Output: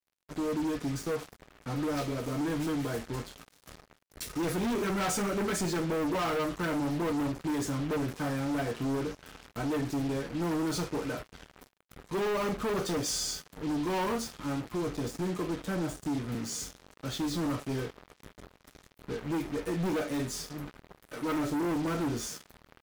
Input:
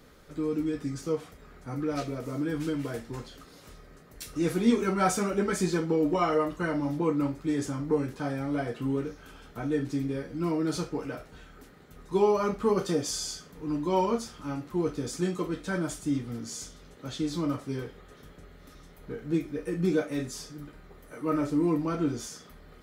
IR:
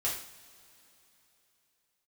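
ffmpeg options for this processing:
-filter_complex "[0:a]asettb=1/sr,asplit=3[link_01][link_02][link_03];[link_01]atrim=end=14.654[link_04];[link_02]atrim=start=14.65:end=16.35,asetpts=PTS-STARTPTS,afade=type=in:duration=0.004:curve=qsin,afade=type=out:start_time=1.696:duration=0.004:curve=qsin,acrossover=split=340|1300[link_05][link_06][link_07];[link_05]acompressor=threshold=-30dB:ratio=4[link_08];[link_06]acompressor=threshold=-34dB:ratio=4[link_09];[link_07]acompressor=threshold=-50dB:ratio=4[link_10];[link_08][link_09][link_10]amix=inputs=3:normalize=0[link_11];[link_03]atrim=start=16.346[link_12];[link_04][link_11]acrossfade=duration=0.004:curve1=hsin:curve2=qsin[link_13];[link_13][link_12]acrossfade=duration=0.004:curve1=qsin:curve2=hsin,volume=31.5dB,asoftclip=hard,volume=-31.5dB,acrusher=bits=6:mix=0:aa=0.5,volume=2dB"

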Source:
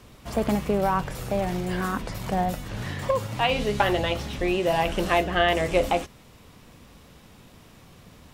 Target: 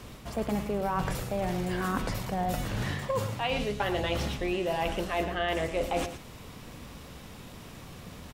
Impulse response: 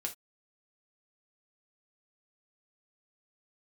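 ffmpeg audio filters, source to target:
-af "areverse,acompressor=threshold=-32dB:ratio=6,areverse,aecho=1:1:113:0.282,volume=4.5dB"

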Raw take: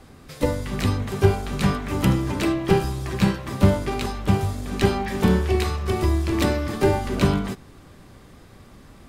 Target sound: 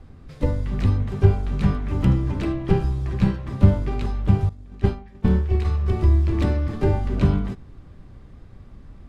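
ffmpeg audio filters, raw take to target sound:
ffmpeg -i in.wav -filter_complex "[0:a]aemphasis=mode=reproduction:type=bsi,asettb=1/sr,asplit=3[link_01][link_02][link_03];[link_01]atrim=end=4.494[link_04];[link_02]atrim=start=4.49:end=5.65,asetpts=PTS-STARTPTS,afade=type=in:duration=0.004:curve=qsin,afade=type=out:start_time=1.156:duration=0.004:curve=qsin,agate=range=-33dB:threshold=-7dB:ratio=3:detection=peak[link_05];[link_03]atrim=start=5.646[link_06];[link_04][link_05]acrossfade=duration=0.004:curve1=hsin:curve2=qsin[link_07];[link_07][link_06]acrossfade=duration=0.004:curve1=qsin:curve2=hsin,volume=-6.5dB" out.wav

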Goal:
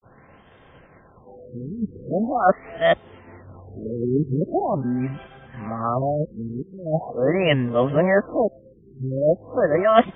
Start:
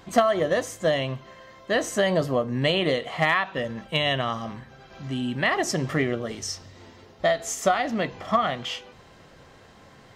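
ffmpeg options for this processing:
ffmpeg -i in.wav -af "areverse,agate=range=-33dB:threshold=-46dB:ratio=3:detection=peak,afftfilt=real='re*lt(b*sr/1024,450*pow(3700/450,0.5+0.5*sin(2*PI*0.42*pts/sr)))':imag='im*lt(b*sr/1024,450*pow(3700/450,0.5+0.5*sin(2*PI*0.42*pts/sr)))':win_size=1024:overlap=0.75,volume=4.5dB" out.wav

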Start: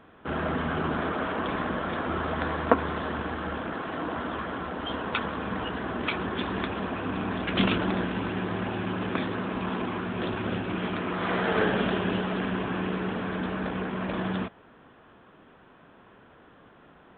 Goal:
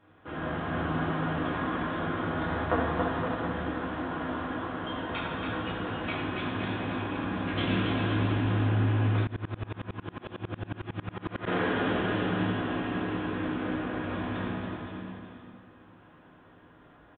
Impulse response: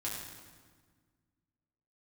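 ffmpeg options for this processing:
-filter_complex "[0:a]aecho=1:1:280|518|720.3|892.3|1038:0.631|0.398|0.251|0.158|0.1[link_01];[1:a]atrim=start_sample=2205[link_02];[link_01][link_02]afir=irnorm=-1:irlink=0,asplit=3[link_03][link_04][link_05];[link_03]afade=type=out:start_time=9.24:duration=0.02[link_06];[link_04]aeval=exprs='val(0)*pow(10,-28*if(lt(mod(-11*n/s,1),2*abs(-11)/1000),1-mod(-11*n/s,1)/(2*abs(-11)/1000),(mod(-11*n/s,1)-2*abs(-11)/1000)/(1-2*abs(-11)/1000))/20)':channel_layout=same,afade=type=in:start_time=9.24:duration=0.02,afade=type=out:start_time=11.46:duration=0.02[link_07];[link_05]afade=type=in:start_time=11.46:duration=0.02[link_08];[link_06][link_07][link_08]amix=inputs=3:normalize=0,volume=-6.5dB"

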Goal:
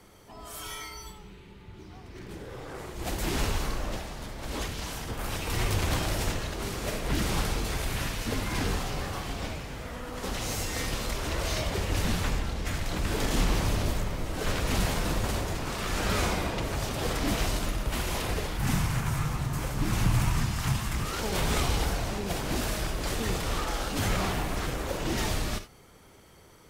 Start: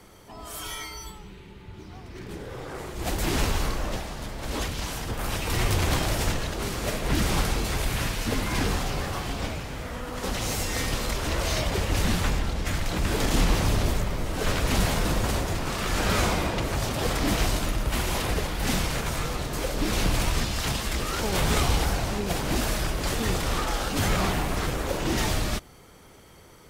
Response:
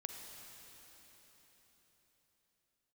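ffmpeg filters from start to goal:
-filter_complex "[0:a]asettb=1/sr,asplit=3[link_01][link_02][link_03];[link_01]atrim=end=18.574[link_04];[link_02]atrim=start=18.57:end=21.05,asetpts=PTS-STARTPTS,afade=type=in:duration=0.004:curve=qsin,afade=type=out:start_time=2.476:duration=0.004:curve=qsin,equalizer=frequency=125:width_type=o:width=1:gain=11,equalizer=frequency=500:width_type=o:width=1:gain=-8,equalizer=frequency=1000:width_type=o:width=1:gain=4,equalizer=frequency=4000:width_type=o:width=1:gain=-5[link_05];[link_03]atrim=start=21.046[link_06];[link_04][link_05]acrossfade=duration=0.004:curve1=hsin:curve2=qsin[link_07];[link_07][link_06]acrossfade=duration=0.004:curve1=qsin:curve2=hsin[link_08];[1:a]atrim=start_sample=2205,atrim=end_sample=3969[link_09];[link_08][link_09]afir=irnorm=-1:irlink=0"

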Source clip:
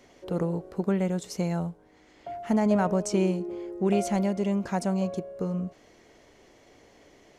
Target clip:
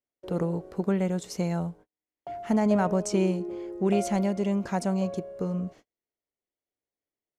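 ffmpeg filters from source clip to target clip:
ffmpeg -i in.wav -af "agate=range=-41dB:threshold=-47dB:ratio=16:detection=peak" out.wav

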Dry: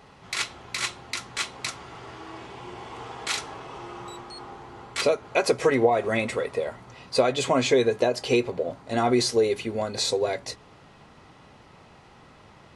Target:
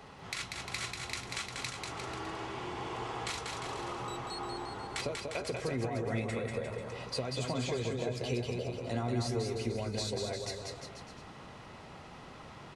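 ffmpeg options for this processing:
ffmpeg -i in.wav -filter_complex "[0:a]acrossover=split=160[link_01][link_02];[link_02]acompressor=threshold=-37dB:ratio=6[link_03];[link_01][link_03]amix=inputs=2:normalize=0,aecho=1:1:190|351.5|488.8|605.5|704.6:0.631|0.398|0.251|0.158|0.1" out.wav

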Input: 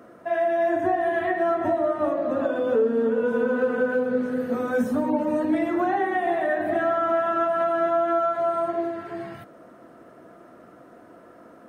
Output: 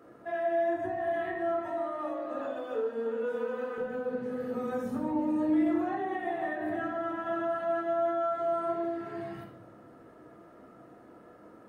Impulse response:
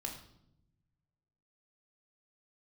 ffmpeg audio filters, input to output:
-filter_complex "[0:a]asettb=1/sr,asplit=3[link_01][link_02][link_03];[link_01]atrim=end=1.594[link_04];[link_02]atrim=start=1.59:end=3.78,asetpts=PTS-STARTPTS,afade=type=in:duration=0.004:curve=qsin,afade=type=out:start_time=2.186:duration=0.004:curve=qsin,highpass=frequency=870:poles=1[link_05];[link_03]atrim=start=3.776[link_06];[link_04][link_05]acrossfade=duration=0.004:curve1=hsin:curve2=qsin[link_07];[link_07][link_06]acrossfade=duration=0.004:curve1=qsin:curve2=hsin,alimiter=limit=-19dB:level=0:latency=1:release=281[link_08];[1:a]atrim=start_sample=2205[link_09];[link_08][link_09]afir=irnorm=-1:irlink=0,volume=-4.5dB"

